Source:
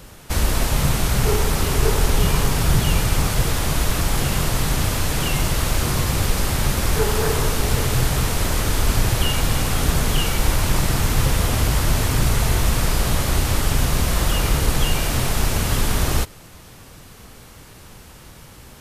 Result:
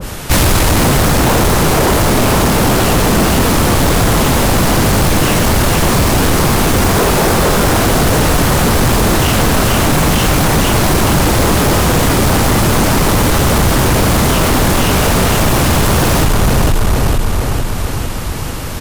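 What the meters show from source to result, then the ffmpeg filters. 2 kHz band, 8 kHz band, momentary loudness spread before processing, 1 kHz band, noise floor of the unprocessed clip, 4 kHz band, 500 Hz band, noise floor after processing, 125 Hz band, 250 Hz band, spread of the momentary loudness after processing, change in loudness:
+10.5 dB, +8.5 dB, 2 LU, +12.5 dB, -43 dBFS, +8.0 dB, +12.5 dB, -19 dBFS, +8.0 dB, +13.5 dB, 3 LU, +9.0 dB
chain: -filter_complex "[0:a]acontrast=89,asplit=2[a][b];[b]aecho=0:1:455|910|1365|1820|2275|2730|3185|3640:0.631|0.372|0.22|0.13|0.0765|0.0451|0.0266|0.0157[c];[a][c]amix=inputs=2:normalize=0,aeval=exprs='1.26*sin(PI/2*5.62*val(0)/1.26)':c=same,adynamicequalizer=threshold=0.0891:dfrequency=1600:dqfactor=0.7:tfrequency=1600:tqfactor=0.7:attack=5:release=100:ratio=0.375:range=3.5:mode=cutabove:tftype=highshelf,volume=-8dB"

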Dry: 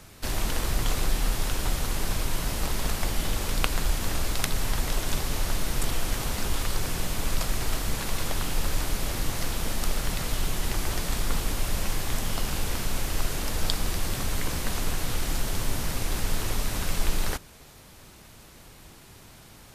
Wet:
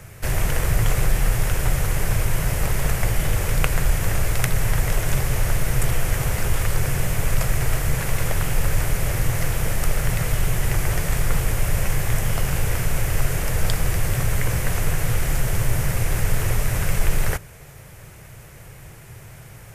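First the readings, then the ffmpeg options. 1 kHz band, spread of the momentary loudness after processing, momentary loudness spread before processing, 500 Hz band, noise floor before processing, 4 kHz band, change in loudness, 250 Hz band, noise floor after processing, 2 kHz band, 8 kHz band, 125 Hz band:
+3.5 dB, 16 LU, 17 LU, +6.0 dB, -50 dBFS, -1.5 dB, +6.0 dB, +4.0 dB, -42 dBFS, +6.5 dB, +3.5 dB, +10.5 dB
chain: -af "equalizer=f=125:t=o:w=1:g=11,equalizer=f=250:t=o:w=1:g=-11,equalizer=f=500:t=o:w=1:g=4,equalizer=f=1k:t=o:w=1:g=-4,equalizer=f=2k:t=o:w=1:g=5,equalizer=f=4k:t=o:w=1:g=-11,acontrast=49"

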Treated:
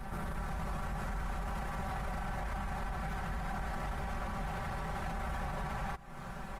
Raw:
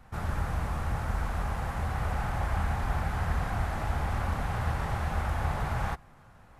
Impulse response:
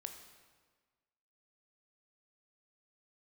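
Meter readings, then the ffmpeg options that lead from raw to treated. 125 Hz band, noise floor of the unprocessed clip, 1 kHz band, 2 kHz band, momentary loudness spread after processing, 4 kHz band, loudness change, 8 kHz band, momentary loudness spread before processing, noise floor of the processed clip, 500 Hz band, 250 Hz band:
-10.0 dB, -55 dBFS, -5.0 dB, -5.0 dB, 1 LU, -5.0 dB, -7.5 dB, -5.0 dB, 2 LU, -44 dBFS, -5.5 dB, -4.0 dB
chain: -af "aecho=1:1:5.2:0.95,acompressor=threshold=-42dB:ratio=6,alimiter=level_in=16dB:limit=-24dB:level=0:latency=1:release=11,volume=-16dB,volume=10dB" -ar 48000 -c:a libopus -b:a 32k

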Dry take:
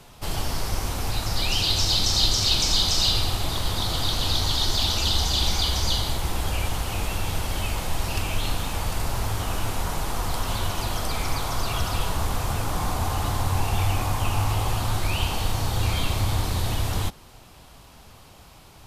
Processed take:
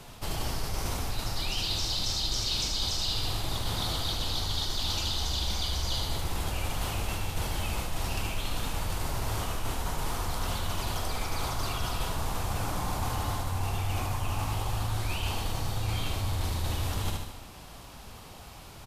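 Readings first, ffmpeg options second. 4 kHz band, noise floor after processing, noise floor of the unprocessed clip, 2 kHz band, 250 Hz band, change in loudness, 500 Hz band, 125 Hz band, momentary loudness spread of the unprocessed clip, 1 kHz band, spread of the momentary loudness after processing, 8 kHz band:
-7.5 dB, -46 dBFS, -48 dBFS, -6.0 dB, -5.5 dB, -6.5 dB, -5.5 dB, -6.0 dB, 9 LU, -5.5 dB, 5 LU, -6.5 dB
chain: -af "aecho=1:1:75|150|225|300|375|450:0.447|0.223|0.112|0.0558|0.0279|0.014,areverse,acompressor=threshold=-28dB:ratio=6,areverse,volume=1dB"

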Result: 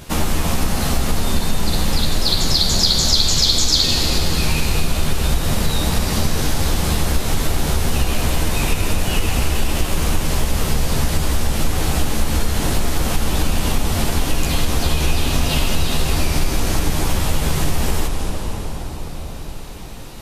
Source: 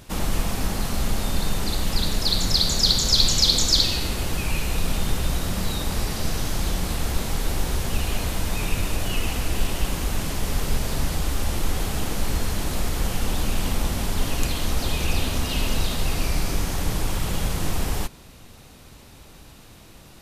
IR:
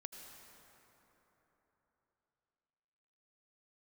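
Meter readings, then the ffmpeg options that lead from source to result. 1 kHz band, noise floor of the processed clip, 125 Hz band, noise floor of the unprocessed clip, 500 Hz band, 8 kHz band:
+6.5 dB, -28 dBFS, +6.5 dB, -47 dBFS, +6.5 dB, +5.5 dB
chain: -filter_complex "[0:a]asplit=2[a][b];[1:a]atrim=start_sample=2205,asetrate=25578,aresample=44100,adelay=13[c];[b][c]afir=irnorm=-1:irlink=0,volume=0.5dB[d];[a][d]amix=inputs=2:normalize=0,acompressor=threshold=-20dB:ratio=3,volume=7dB"

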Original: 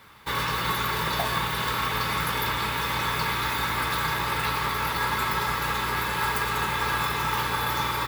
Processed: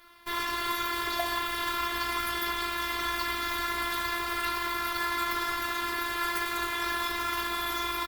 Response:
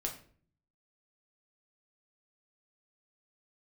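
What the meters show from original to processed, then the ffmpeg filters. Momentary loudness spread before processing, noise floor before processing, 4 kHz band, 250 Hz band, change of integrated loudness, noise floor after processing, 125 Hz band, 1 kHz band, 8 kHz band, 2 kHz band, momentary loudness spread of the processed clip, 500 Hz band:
1 LU, -29 dBFS, -3.5 dB, -3.0 dB, -4.0 dB, -33 dBFS, -17.5 dB, -4.5 dB, -3.5 dB, -4.0 dB, 1 LU, -4.5 dB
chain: -filter_complex "[0:a]aeval=exprs='0.237*(cos(1*acos(clip(val(0)/0.237,-1,1)))-cos(1*PI/2))+0.0168*(cos(4*acos(clip(val(0)/0.237,-1,1)))-cos(4*PI/2))+0.0133*(cos(6*acos(clip(val(0)/0.237,-1,1)))-cos(6*PI/2))':c=same,afftfilt=real='hypot(re,im)*cos(PI*b)':imag='0':win_size=512:overlap=0.75,asplit=4[a][b][c][d];[b]adelay=84,afreqshift=56,volume=-21dB[e];[c]adelay=168,afreqshift=112,volume=-29.6dB[f];[d]adelay=252,afreqshift=168,volume=-38.3dB[g];[a][e][f][g]amix=inputs=4:normalize=0" -ar 48000 -c:a libopus -b:a 32k

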